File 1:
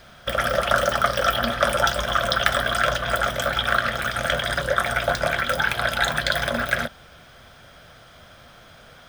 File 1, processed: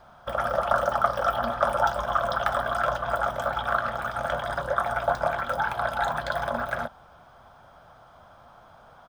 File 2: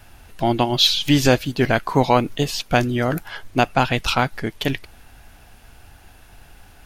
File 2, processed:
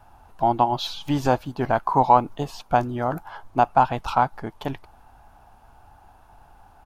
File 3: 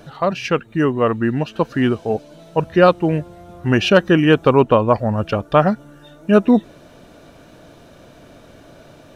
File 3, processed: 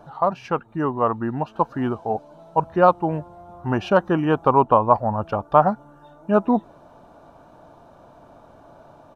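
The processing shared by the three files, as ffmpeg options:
-af "firequalizer=gain_entry='entry(480,0);entry(860,13);entry(1900,-8)':delay=0.05:min_phase=1,volume=-7dB"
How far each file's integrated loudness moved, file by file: −4.5, −3.5, −4.0 LU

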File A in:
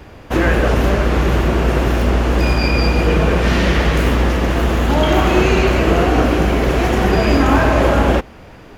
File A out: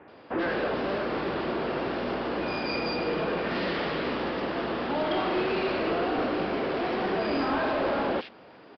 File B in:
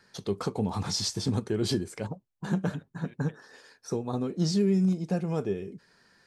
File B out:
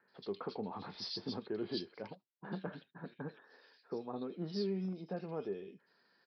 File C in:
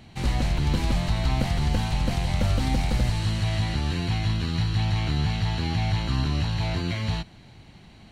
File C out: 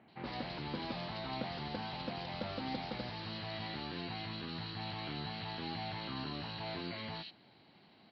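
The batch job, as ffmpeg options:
-filter_complex "[0:a]highpass=260,aresample=16000,asoftclip=type=tanh:threshold=-13.5dB,aresample=44100,acrossover=split=2300[link_01][link_02];[link_02]adelay=80[link_03];[link_01][link_03]amix=inputs=2:normalize=0,aresample=11025,aresample=44100,volume=-8dB"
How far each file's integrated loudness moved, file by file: −13.5, −12.0, −15.5 LU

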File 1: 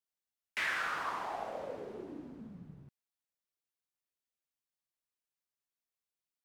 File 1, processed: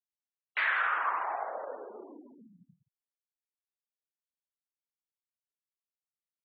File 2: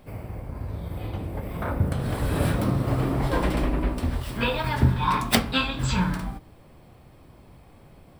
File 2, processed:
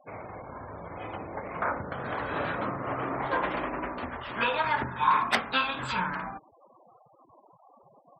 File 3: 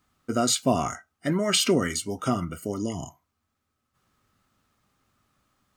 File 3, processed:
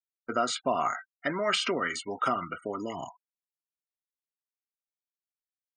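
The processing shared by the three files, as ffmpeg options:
-af "acompressor=threshold=-28dB:ratio=2,bandpass=frequency=1300:width_type=q:width=0.92:csg=0,afftfilt=real='re*gte(hypot(re,im),0.00316)':imag='im*gte(hypot(re,im),0.00316)':win_size=1024:overlap=0.75,volume=7.5dB"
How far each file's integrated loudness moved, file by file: +6.5, −4.0, −4.5 LU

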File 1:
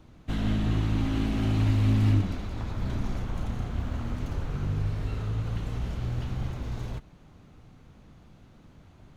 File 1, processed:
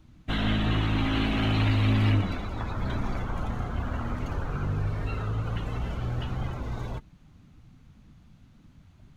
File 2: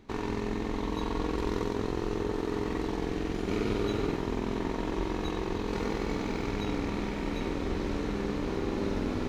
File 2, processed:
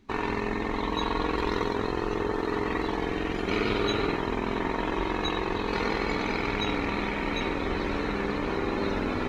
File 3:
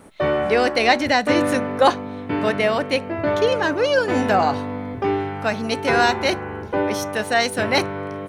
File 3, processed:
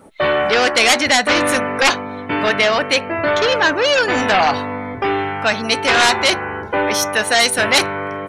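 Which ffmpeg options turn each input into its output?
-af "aeval=exprs='0.891*sin(PI/2*3.98*val(0)/0.891)':channel_layout=same,afftdn=noise_reduction=15:noise_floor=-30,tiltshelf=frequency=730:gain=-6.5,volume=-9.5dB"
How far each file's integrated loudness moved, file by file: +0.5, +3.5, +5.0 LU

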